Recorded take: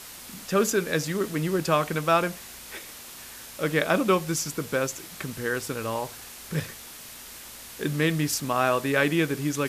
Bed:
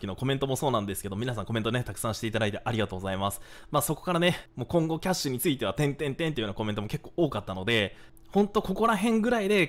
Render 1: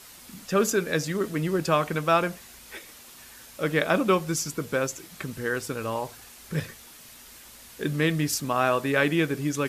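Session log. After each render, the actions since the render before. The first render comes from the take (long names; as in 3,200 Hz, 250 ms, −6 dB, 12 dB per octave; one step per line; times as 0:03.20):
broadband denoise 6 dB, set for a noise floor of −43 dBFS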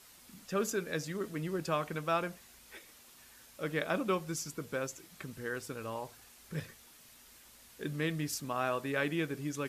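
level −10 dB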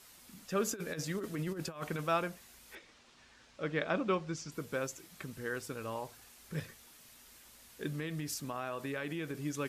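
0:00.66–0:02.07: compressor whose output falls as the input rises −37 dBFS, ratio −0.5
0:02.75–0:04.52: Bessel low-pass filter 4,600 Hz, order 4
0:07.90–0:09.35: downward compressor, threshold −34 dBFS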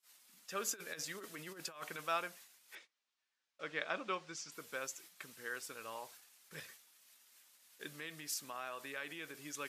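high-pass filter 1,400 Hz 6 dB per octave
noise gate −57 dBFS, range −25 dB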